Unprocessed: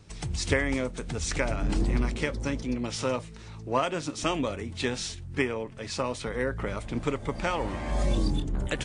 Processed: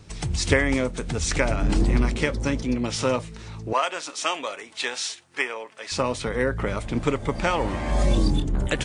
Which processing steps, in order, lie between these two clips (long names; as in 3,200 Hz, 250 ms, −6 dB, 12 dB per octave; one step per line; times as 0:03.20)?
0:03.73–0:05.92: high-pass filter 720 Hz 12 dB per octave
level +5.5 dB